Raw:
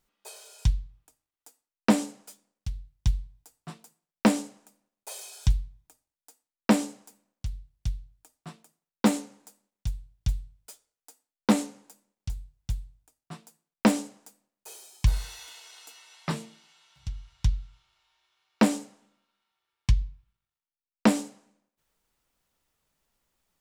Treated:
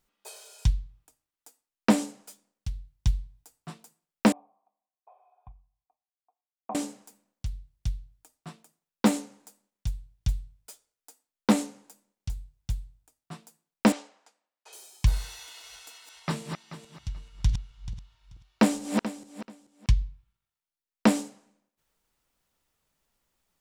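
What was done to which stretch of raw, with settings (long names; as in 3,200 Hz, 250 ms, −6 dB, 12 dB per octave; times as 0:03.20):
0:04.32–0:06.75: formant resonators in series a
0:13.92–0:14.73: band-pass filter 670–4,100 Hz
0:15.33–0:19.92: feedback delay that plays each chunk backwards 217 ms, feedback 44%, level −6 dB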